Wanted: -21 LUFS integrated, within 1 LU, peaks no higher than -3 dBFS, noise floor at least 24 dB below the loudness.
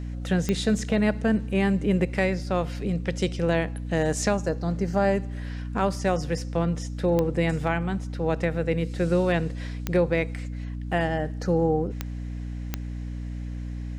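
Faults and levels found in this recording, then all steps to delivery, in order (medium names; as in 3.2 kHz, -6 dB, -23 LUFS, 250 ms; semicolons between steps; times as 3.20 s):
clicks found 5; hum 60 Hz; highest harmonic 300 Hz; hum level -30 dBFS; loudness -26.5 LUFS; peak level -9.0 dBFS; loudness target -21.0 LUFS
-> de-click; de-hum 60 Hz, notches 5; trim +5.5 dB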